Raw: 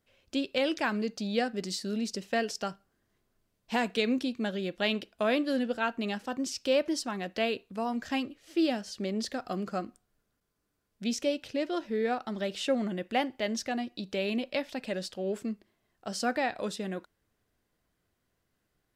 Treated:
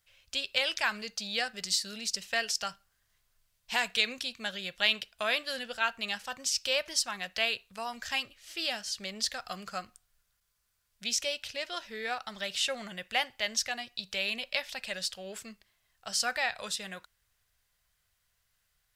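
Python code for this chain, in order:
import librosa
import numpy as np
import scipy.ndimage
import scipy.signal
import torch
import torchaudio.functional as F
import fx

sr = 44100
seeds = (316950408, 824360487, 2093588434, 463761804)

y = fx.tone_stack(x, sr, knobs='10-0-10')
y = y * librosa.db_to_amplitude(8.5)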